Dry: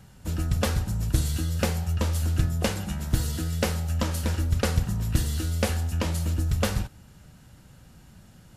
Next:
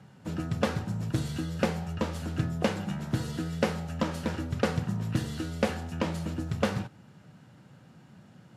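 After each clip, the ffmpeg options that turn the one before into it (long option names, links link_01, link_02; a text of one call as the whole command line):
ffmpeg -i in.wav -af "highpass=frequency=120:width=0.5412,highpass=frequency=120:width=1.3066,aemphasis=mode=reproduction:type=75fm" out.wav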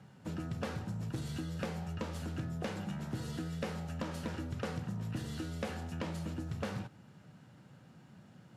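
ffmpeg -i in.wav -af "asoftclip=type=tanh:threshold=-22dB,acompressor=threshold=-32dB:ratio=3,volume=-3.5dB" out.wav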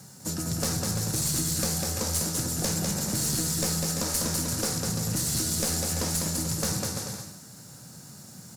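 ffmpeg -i in.wav -af "aecho=1:1:200|340|438|506.6|554.6:0.631|0.398|0.251|0.158|0.1,aexciter=amount=8.5:drive=7.8:freq=4500,aeval=exprs='clip(val(0),-1,0.0266)':channel_layout=same,volume=6dB" out.wav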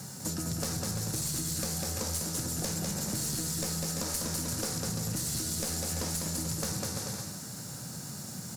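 ffmpeg -i in.wav -af "acompressor=threshold=-40dB:ratio=3,volume=5.5dB" out.wav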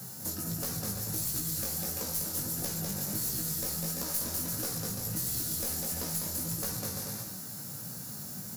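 ffmpeg -i in.wav -filter_complex "[0:a]flanger=delay=16:depth=5.3:speed=1.5,acrossover=split=290[link_01][link_02];[link_02]aexciter=amount=4.5:drive=4.7:freq=11000[link_03];[link_01][link_03]amix=inputs=2:normalize=0" out.wav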